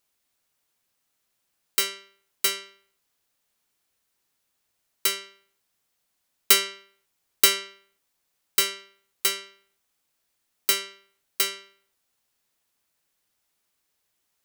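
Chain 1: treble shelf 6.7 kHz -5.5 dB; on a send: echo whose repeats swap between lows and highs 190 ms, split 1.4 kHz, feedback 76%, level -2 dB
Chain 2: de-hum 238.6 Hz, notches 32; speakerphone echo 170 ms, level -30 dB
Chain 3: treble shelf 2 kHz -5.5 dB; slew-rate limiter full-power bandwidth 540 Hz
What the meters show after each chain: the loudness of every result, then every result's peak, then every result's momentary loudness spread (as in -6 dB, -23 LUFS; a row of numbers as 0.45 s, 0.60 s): -28.0 LUFS, -24.5 LUFS, -31.0 LUFS; -6.5 dBFS, -2.0 dBFS, -10.5 dBFS; 20 LU, 21 LU, 19 LU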